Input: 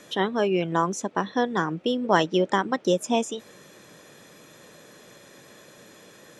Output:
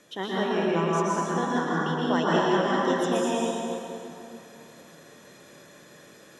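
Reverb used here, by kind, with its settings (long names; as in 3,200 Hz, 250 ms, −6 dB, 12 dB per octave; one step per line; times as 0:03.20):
dense smooth reverb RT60 2.9 s, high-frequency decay 0.7×, pre-delay 105 ms, DRR −7 dB
level −8.5 dB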